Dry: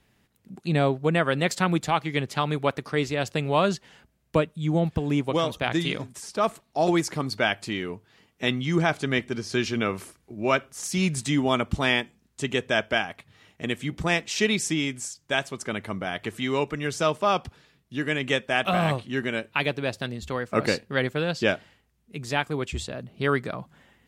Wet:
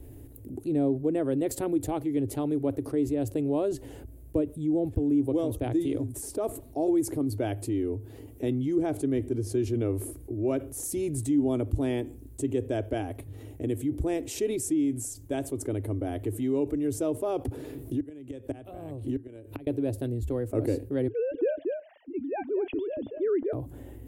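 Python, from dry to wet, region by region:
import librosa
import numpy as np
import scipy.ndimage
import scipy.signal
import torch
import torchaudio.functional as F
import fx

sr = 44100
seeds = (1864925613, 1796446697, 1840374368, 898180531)

y = fx.chain(x, sr, fx.gate_flip(shuts_db=-16.0, range_db=-33),
    fx.band_squash(depth_pct=100), at=(17.45, 19.67))
y = fx.chain(y, sr, fx.sine_speech(),
    fx.echo_single(ms=235, db=-9.0), at=(21.08, 23.53))
y = fx.curve_eq(y, sr, hz=(110.0, 190.0, 280.0, 700.0, 1200.0, 5300.0, 11000.0), db=(0, -28, 1, -15, -28, -28, -7))
y = fx.env_flatten(y, sr, amount_pct=50)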